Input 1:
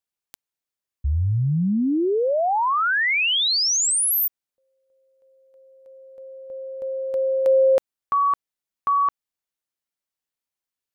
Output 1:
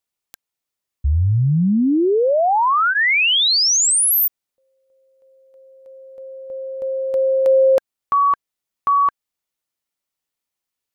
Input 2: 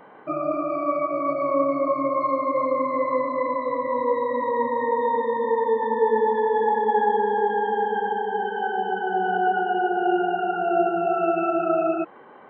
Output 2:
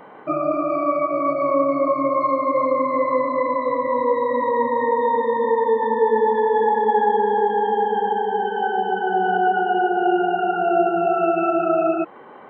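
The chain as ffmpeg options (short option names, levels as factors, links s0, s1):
-filter_complex "[0:a]bandreject=f=1600:w=17,asplit=2[s0][s1];[s1]alimiter=limit=0.133:level=0:latency=1:release=384,volume=0.75[s2];[s0][s2]amix=inputs=2:normalize=0"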